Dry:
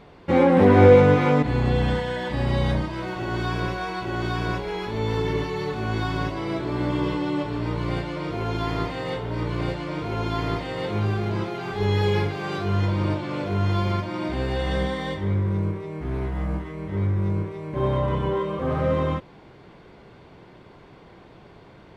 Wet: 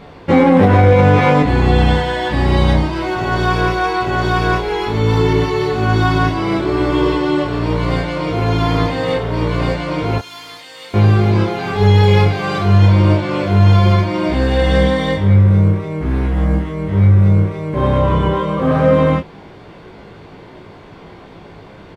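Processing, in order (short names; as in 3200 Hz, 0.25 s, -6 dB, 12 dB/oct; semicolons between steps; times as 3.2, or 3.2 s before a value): 10.18–10.94 differentiator; early reflections 19 ms -4.5 dB, 30 ms -7.5 dB; maximiser +9.5 dB; gain -1 dB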